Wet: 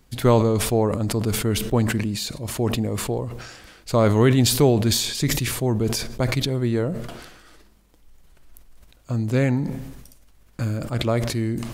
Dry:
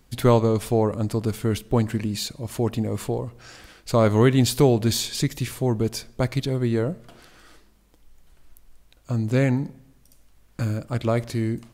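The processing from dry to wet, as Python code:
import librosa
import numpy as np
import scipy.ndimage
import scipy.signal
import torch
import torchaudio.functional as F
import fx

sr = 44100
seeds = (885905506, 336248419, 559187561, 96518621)

y = fx.sustainer(x, sr, db_per_s=48.0)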